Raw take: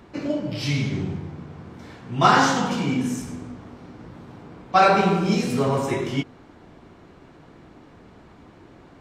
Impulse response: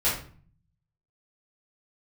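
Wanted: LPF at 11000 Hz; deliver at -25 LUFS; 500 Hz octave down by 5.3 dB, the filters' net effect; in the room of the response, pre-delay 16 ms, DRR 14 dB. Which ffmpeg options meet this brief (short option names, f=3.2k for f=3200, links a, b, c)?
-filter_complex "[0:a]lowpass=11k,equalizer=f=500:t=o:g=-7,asplit=2[a][b];[1:a]atrim=start_sample=2205,adelay=16[c];[b][c]afir=irnorm=-1:irlink=0,volume=-25.5dB[d];[a][d]amix=inputs=2:normalize=0,volume=-1.5dB"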